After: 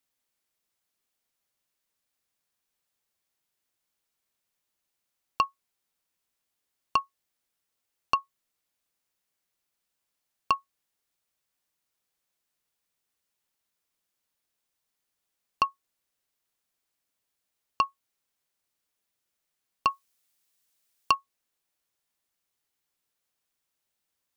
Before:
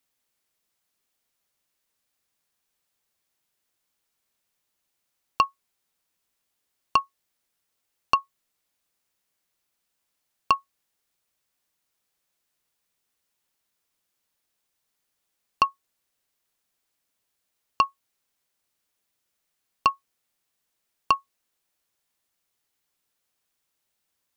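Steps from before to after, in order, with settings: 19.90–21.15 s: treble shelf 2.6 kHz +9 dB; trim -4 dB

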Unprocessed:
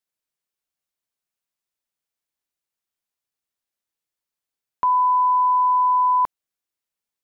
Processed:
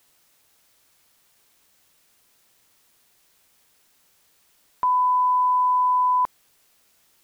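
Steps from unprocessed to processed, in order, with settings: word length cut 10-bit, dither triangular; trim -2 dB

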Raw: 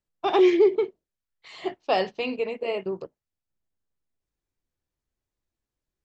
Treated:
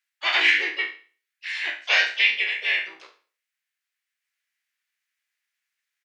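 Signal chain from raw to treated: spectral sustain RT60 0.39 s; resonant high-pass 2.1 kHz, resonance Q 4.2; harmony voices -3 st -1 dB, +4 st -6 dB; trim +2.5 dB

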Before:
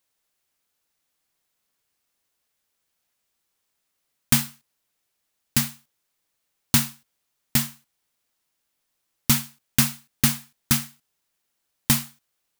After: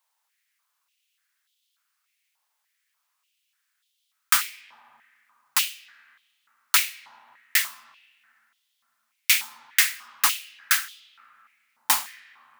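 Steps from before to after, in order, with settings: modulation noise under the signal 10 dB; algorithmic reverb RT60 3.6 s, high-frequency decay 0.35×, pre-delay 40 ms, DRR 18 dB; step-sequenced high-pass 3.4 Hz 900–3300 Hz; trim -1 dB

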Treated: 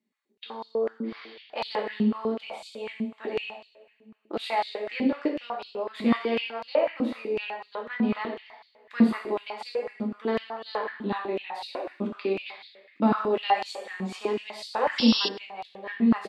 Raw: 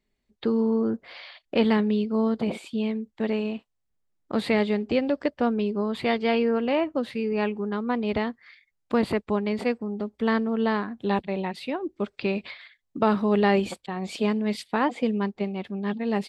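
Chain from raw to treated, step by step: two-slope reverb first 0.73 s, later 2.4 s, DRR -1.5 dB; painted sound noise, 14.98–15.29 s, 2.6–5.6 kHz -19 dBFS; on a send: delay 98 ms -22.5 dB; on the sum: step-sequenced high-pass 8 Hz 230–4200 Hz; trim -9 dB

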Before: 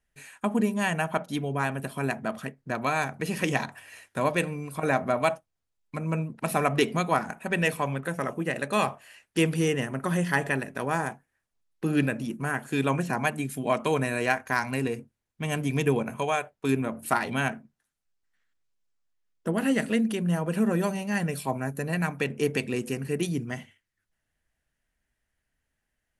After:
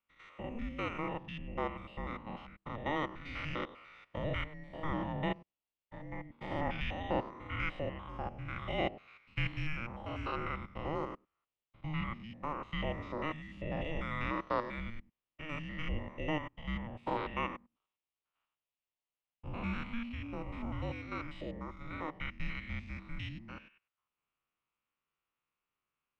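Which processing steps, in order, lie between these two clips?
spectrogram pixelated in time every 100 ms; cabinet simulation 460–3800 Hz, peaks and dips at 660 Hz -7 dB, 2 kHz -9 dB, 3.3 kHz +5 dB; frequency shift -460 Hz; trim -2.5 dB

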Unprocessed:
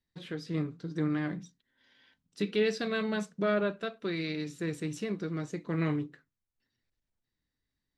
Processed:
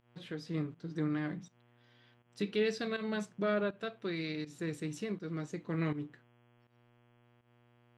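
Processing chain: mains buzz 120 Hz, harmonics 28, -63 dBFS -5 dB/octave; volume shaper 81 bpm, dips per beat 1, -13 dB, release 146 ms; trim -3.5 dB

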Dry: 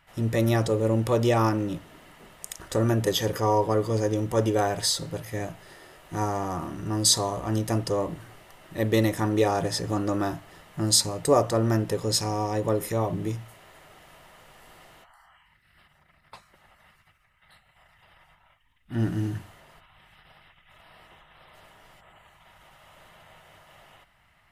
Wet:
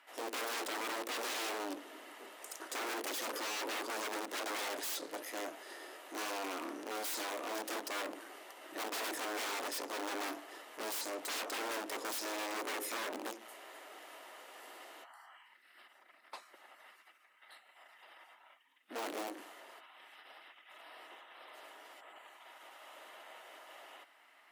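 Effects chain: integer overflow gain 24 dB; valve stage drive 38 dB, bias 0.35; steep high-pass 270 Hz 48 dB/octave; trim +1 dB

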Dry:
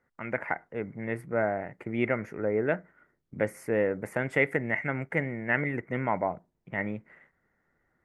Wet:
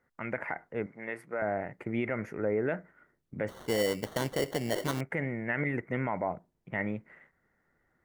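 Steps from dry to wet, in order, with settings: 3.48–5.01 s: sample-rate reducer 2.5 kHz, jitter 0%; peak limiter -20 dBFS, peak gain reduction 8.5 dB; 0.86–1.42 s: frequency weighting A

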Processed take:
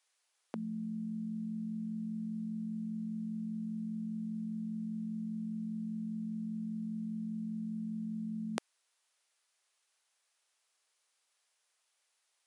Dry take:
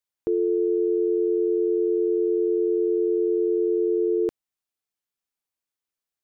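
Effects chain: speed mistake 15 ips tape played at 7.5 ips; Bessel high-pass 650 Hz, order 4; trim +10.5 dB

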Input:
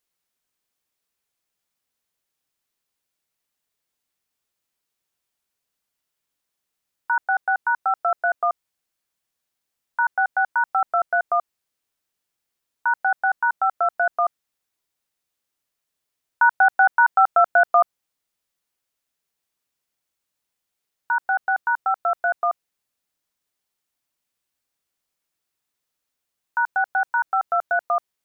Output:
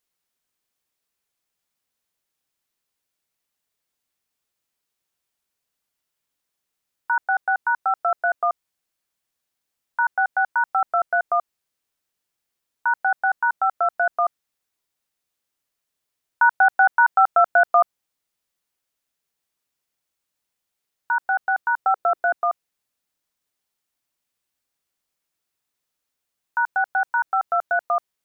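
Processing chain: 21.84–22.32 s: peaking EQ 510 Hz -> 300 Hz +9 dB 1.1 oct

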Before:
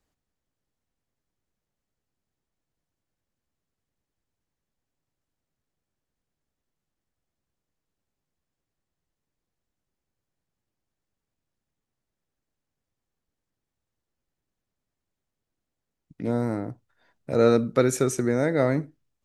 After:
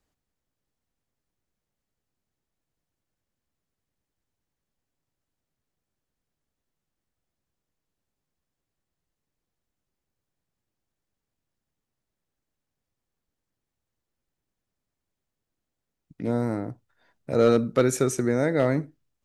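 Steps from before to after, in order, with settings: hard clipper -11 dBFS, distortion -25 dB

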